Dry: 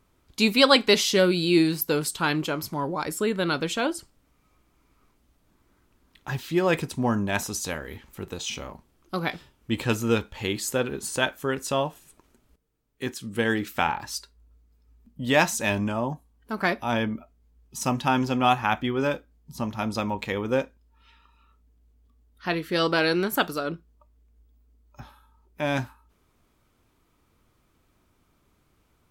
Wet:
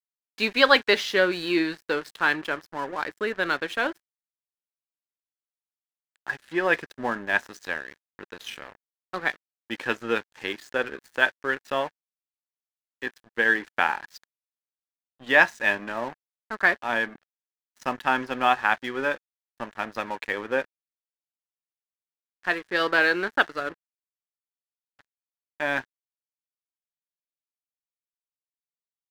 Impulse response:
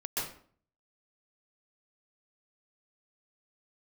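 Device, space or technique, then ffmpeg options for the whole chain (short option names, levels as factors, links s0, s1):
pocket radio on a weak battery: -af "highpass=350,lowpass=3700,aeval=exprs='sgn(val(0))*max(abs(val(0))-0.00891,0)':c=same,equalizer=f=1700:t=o:w=0.39:g=11"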